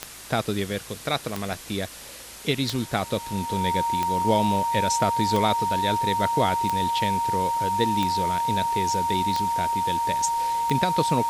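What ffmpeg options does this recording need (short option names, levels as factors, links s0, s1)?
-af "adeclick=t=4,bandreject=f=55.3:t=h:w=4,bandreject=f=110.6:t=h:w=4,bandreject=f=165.9:t=h:w=4,bandreject=f=221.2:t=h:w=4,bandreject=f=276.5:t=h:w=4,bandreject=f=930:w=30,afwtdn=0.01"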